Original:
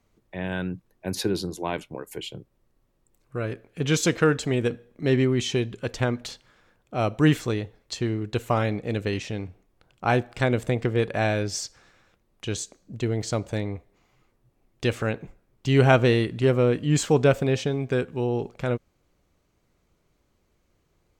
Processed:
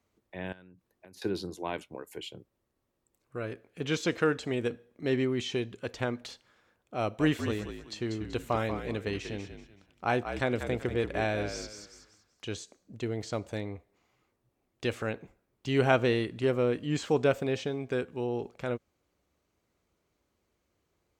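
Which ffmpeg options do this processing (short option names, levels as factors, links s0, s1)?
-filter_complex "[0:a]asettb=1/sr,asplit=3[s0][s1][s2];[s0]atrim=end=0.524[s3];[s1]atrim=start=0.52:end=1.22,asetpts=PTS-STARTPTS,afade=t=in:d=0.004:c=qsin,afade=t=out:st=0.696:d=0.004:c=qsin,acompressor=threshold=0.00794:ratio=16:attack=3.2:release=140:knee=1:detection=peak[s4];[s2]atrim=start=1.216[s5];[s3][s4]acrossfade=d=0.004:c1=hsin:c2=qsin[s6];[s6][s5]acrossfade=d=0.004:c1=qsin:c2=hsin,asettb=1/sr,asplit=3[s7][s8][s9];[s7]atrim=end=7.014[s10];[s8]atrim=start=7.01:end=12.46,asetpts=PTS-STARTPTS,afade=t=in:d=0.004:c=qsin,afade=t=out:st=5.446:d=0.004:c=qsin,asplit=5[s11][s12][s13][s14][s15];[s12]adelay=190,afreqshift=-52,volume=0.376[s16];[s13]adelay=380,afreqshift=-104,volume=0.12[s17];[s14]adelay=570,afreqshift=-156,volume=0.0385[s18];[s15]adelay=760,afreqshift=-208,volume=0.0123[s19];[s11][s16][s17][s18][s19]amix=inputs=5:normalize=0,atrim=end_sample=240345[s20];[s9]atrim=start=12.456[s21];[s10][s20]acrossfade=d=0.004:c1=hsin:c2=qsin[s22];[s22][s21]acrossfade=d=0.004:c1=qsin:c2=hsin,acrossover=split=5000[s23][s24];[s24]acompressor=threshold=0.00708:ratio=4:attack=1:release=60[s25];[s23][s25]amix=inputs=2:normalize=0,highpass=65,equalizer=f=140:w=1.6:g=-6,volume=0.531"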